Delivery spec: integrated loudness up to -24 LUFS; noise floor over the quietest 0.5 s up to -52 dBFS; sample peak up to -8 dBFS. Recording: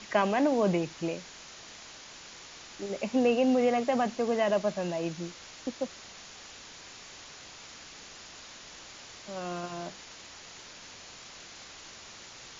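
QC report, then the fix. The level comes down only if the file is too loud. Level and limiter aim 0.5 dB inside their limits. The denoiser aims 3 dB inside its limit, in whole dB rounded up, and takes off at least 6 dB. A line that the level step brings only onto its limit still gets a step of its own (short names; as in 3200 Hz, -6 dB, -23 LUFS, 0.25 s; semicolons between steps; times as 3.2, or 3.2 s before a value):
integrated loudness -30.0 LUFS: OK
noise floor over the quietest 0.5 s -48 dBFS: fail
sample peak -11.5 dBFS: OK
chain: denoiser 7 dB, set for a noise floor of -48 dBFS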